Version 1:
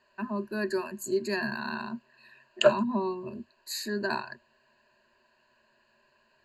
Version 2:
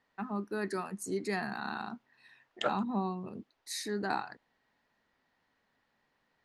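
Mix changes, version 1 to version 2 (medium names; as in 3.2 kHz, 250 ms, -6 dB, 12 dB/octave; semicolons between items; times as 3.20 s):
second voice -7.5 dB; master: remove rippled EQ curve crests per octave 1.4, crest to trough 18 dB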